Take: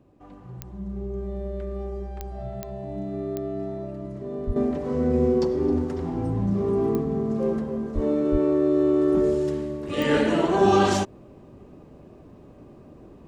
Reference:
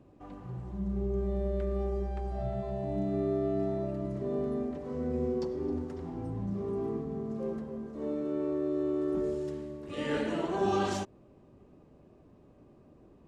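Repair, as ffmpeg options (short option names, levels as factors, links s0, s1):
-filter_complex "[0:a]adeclick=t=4,asplit=3[s0][s1][s2];[s0]afade=t=out:st=4.46:d=0.02[s3];[s1]highpass=f=140:w=0.5412,highpass=f=140:w=1.3066,afade=t=in:st=4.46:d=0.02,afade=t=out:st=4.58:d=0.02[s4];[s2]afade=t=in:st=4.58:d=0.02[s5];[s3][s4][s5]amix=inputs=3:normalize=0,asplit=3[s6][s7][s8];[s6]afade=t=out:st=7.94:d=0.02[s9];[s7]highpass=f=140:w=0.5412,highpass=f=140:w=1.3066,afade=t=in:st=7.94:d=0.02,afade=t=out:st=8.06:d=0.02[s10];[s8]afade=t=in:st=8.06:d=0.02[s11];[s9][s10][s11]amix=inputs=3:normalize=0,asplit=3[s12][s13][s14];[s12]afade=t=out:st=8.31:d=0.02[s15];[s13]highpass=f=140:w=0.5412,highpass=f=140:w=1.3066,afade=t=in:st=8.31:d=0.02,afade=t=out:st=8.43:d=0.02[s16];[s14]afade=t=in:st=8.43:d=0.02[s17];[s15][s16][s17]amix=inputs=3:normalize=0,asetnsamples=n=441:p=0,asendcmd='4.56 volume volume -10.5dB',volume=1"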